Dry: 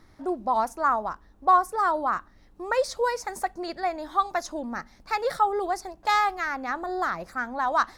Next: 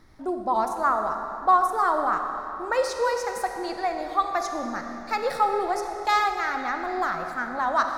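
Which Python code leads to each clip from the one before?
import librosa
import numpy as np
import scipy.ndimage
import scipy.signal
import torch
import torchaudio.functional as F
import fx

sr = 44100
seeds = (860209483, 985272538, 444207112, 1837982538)

y = fx.rev_freeverb(x, sr, rt60_s=3.1, hf_ratio=0.85, predelay_ms=5, drr_db=4.5)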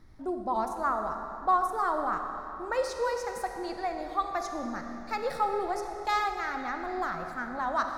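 y = fx.low_shelf(x, sr, hz=230.0, db=8.5)
y = y * librosa.db_to_amplitude(-6.5)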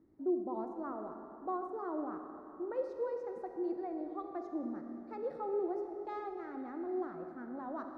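y = fx.bandpass_q(x, sr, hz=330.0, q=2.8)
y = y * librosa.db_to_amplitude(2.0)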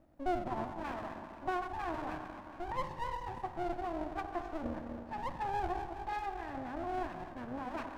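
y = fx.lower_of_two(x, sr, delay_ms=1.1)
y = y * librosa.db_to_amplitude(4.0)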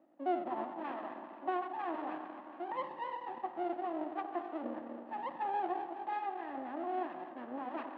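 y = fx.cabinet(x, sr, low_hz=280.0, low_slope=24, high_hz=2800.0, hz=(440.0, 650.0, 1000.0, 1500.0, 2300.0), db=(-6, -3, -4, -8, -8))
y = y * librosa.db_to_amplitude(3.5)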